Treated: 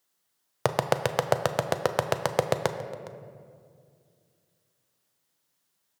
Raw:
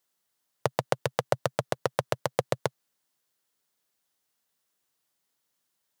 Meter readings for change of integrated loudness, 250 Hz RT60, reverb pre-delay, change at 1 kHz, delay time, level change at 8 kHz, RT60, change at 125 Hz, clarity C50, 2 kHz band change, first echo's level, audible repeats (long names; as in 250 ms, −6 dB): +2.5 dB, 3.2 s, 8 ms, +3.5 dB, 412 ms, +3.0 dB, 2.2 s, +2.5 dB, 9.5 dB, +3.0 dB, −20.0 dB, 1